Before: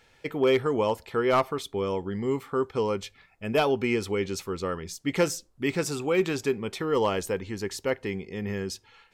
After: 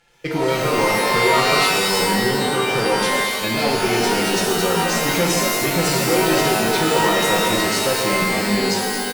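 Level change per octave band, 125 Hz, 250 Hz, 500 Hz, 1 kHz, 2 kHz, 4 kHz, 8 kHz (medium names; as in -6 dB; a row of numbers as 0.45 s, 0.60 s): +9.0 dB, +8.0 dB, +6.5 dB, +13.0 dB, +15.0 dB, +17.5 dB, +17.0 dB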